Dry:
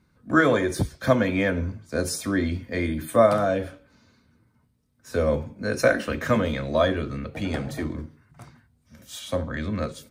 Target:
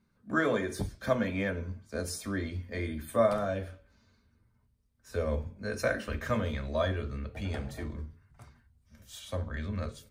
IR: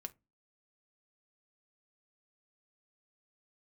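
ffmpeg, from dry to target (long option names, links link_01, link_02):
-filter_complex "[0:a]asubboost=boost=9.5:cutoff=61[link_01];[1:a]atrim=start_sample=2205,asetrate=48510,aresample=44100[link_02];[link_01][link_02]afir=irnorm=-1:irlink=0,volume=-3dB"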